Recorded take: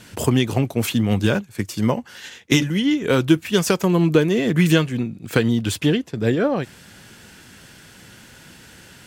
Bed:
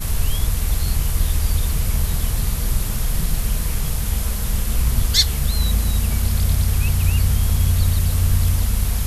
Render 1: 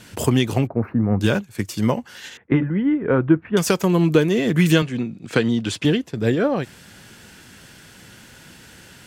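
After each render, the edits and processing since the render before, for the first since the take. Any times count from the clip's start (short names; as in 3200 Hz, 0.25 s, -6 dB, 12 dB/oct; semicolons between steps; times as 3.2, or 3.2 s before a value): 0.67–1.21 inverse Chebyshev low-pass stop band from 3100 Hz; 2.37–3.57 LPF 1700 Hz 24 dB/oct; 4.82–5.85 BPF 130–7400 Hz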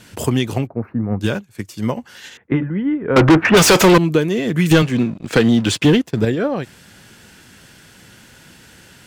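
0.58–1.96 upward expander, over -26 dBFS; 3.16–3.98 overdrive pedal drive 36 dB, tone 4100 Hz, clips at -2 dBFS; 4.71–6.25 sample leveller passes 2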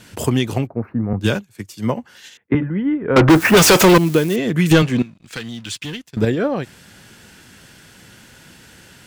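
1.13–2.55 three-band expander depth 70%; 3.29–4.36 switching spikes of -18.5 dBFS; 5.02–6.17 passive tone stack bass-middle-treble 5-5-5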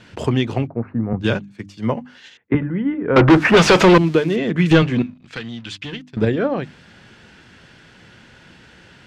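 LPF 3800 Hz 12 dB/oct; notches 50/100/150/200/250/300 Hz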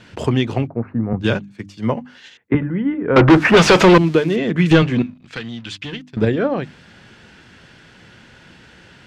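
gain +1 dB; limiter -2 dBFS, peak gain reduction 1 dB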